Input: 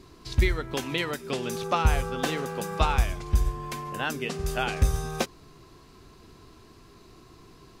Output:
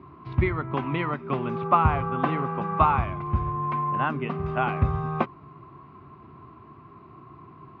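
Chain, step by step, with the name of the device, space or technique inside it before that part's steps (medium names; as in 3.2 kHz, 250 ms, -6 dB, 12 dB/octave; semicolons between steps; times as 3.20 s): bass cabinet (cabinet simulation 79–2100 Hz, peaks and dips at 140 Hz +5 dB, 480 Hz -9 dB, 1.1 kHz +9 dB, 1.7 kHz -8 dB); trim +4 dB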